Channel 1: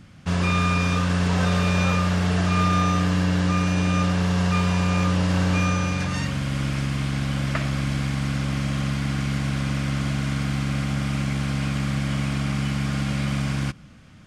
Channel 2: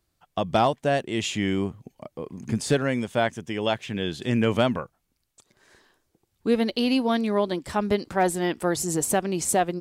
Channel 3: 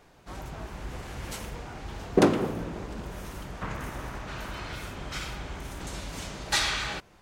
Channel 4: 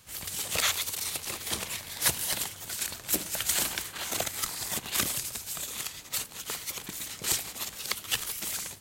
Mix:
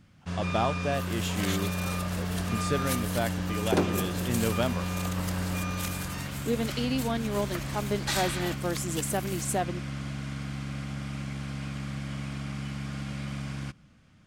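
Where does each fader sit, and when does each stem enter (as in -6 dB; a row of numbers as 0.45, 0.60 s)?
-10.5, -7.0, -5.5, -9.5 dB; 0.00, 0.00, 1.55, 0.85 s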